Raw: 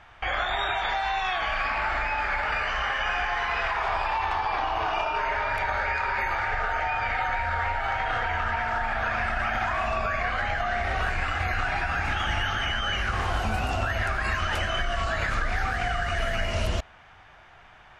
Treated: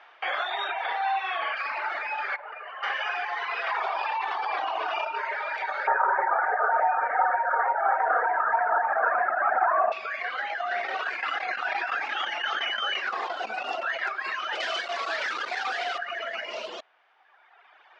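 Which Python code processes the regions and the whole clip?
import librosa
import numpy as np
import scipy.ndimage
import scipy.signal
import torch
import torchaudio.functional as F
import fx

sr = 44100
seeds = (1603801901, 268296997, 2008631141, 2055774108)

y = fx.chain(x, sr, fx.brickwall_bandpass(low_hz=190.0, high_hz=6500.0),
    fx.bass_treble(bass_db=4, treble_db=-12),
    fx.room_flutter(wall_m=9.9, rt60_s=0.74), at=(0.72, 1.57))
y = fx.chain(y, sr, fx.highpass(hz=390.0, slope=6),
    fx.spacing_loss(db_at_10k=42), at=(2.36, 2.83))
y = fx.chain(y, sr, fx.highpass(hz=51.0, slope=12),
    fx.env_flatten(amount_pct=100), at=(3.67, 5.05))
y = fx.chain(y, sr, fx.ellip_bandpass(low_hz=150.0, high_hz=1600.0, order=3, stop_db=40),
    fx.peak_eq(hz=700.0, db=10.0, octaves=2.8), at=(5.87, 9.92))
y = fx.chain(y, sr, fx.tremolo_shape(shape='saw_down', hz=5.8, depth_pct=75),
    fx.env_flatten(amount_pct=100), at=(10.71, 14.09))
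y = fx.chain(y, sr, fx.low_shelf(hz=120.0, db=-4.0),
    fx.quant_companded(bits=2), at=(14.6, 15.98))
y = scipy.signal.sosfilt(scipy.signal.butter(4, 5100.0, 'lowpass', fs=sr, output='sos'), y)
y = fx.dereverb_blind(y, sr, rt60_s=1.8)
y = scipy.signal.sosfilt(scipy.signal.butter(4, 380.0, 'highpass', fs=sr, output='sos'), y)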